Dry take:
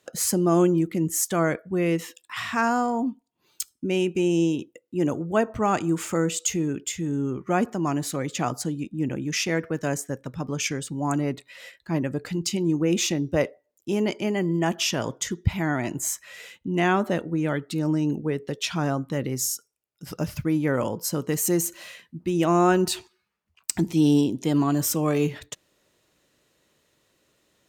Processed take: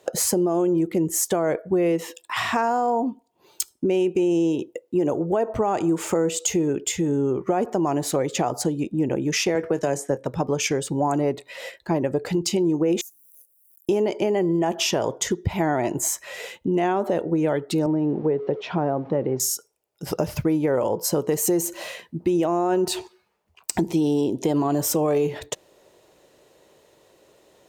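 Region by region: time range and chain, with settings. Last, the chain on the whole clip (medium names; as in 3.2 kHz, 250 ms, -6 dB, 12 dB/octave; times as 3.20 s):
9.55–10.25 s: low-pass 12 kHz 24 dB/octave + doubling 22 ms -13.5 dB + three bands compressed up and down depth 40%
13.01–13.89 s: companding laws mixed up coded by mu + inverse Chebyshev high-pass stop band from 2.9 kHz, stop band 70 dB + swell ahead of each attack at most 35 dB/s
17.86–19.40 s: jump at every zero crossing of -41.5 dBFS + high-pass 110 Hz + tape spacing loss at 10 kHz 41 dB
whole clip: high-order bell 580 Hz +9.5 dB; peak limiter -11.5 dBFS; compression 3:1, threshold -27 dBFS; trim +6 dB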